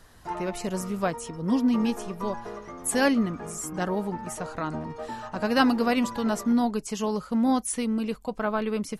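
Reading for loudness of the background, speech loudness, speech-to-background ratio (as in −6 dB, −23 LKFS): −39.0 LKFS, −27.0 LKFS, 12.0 dB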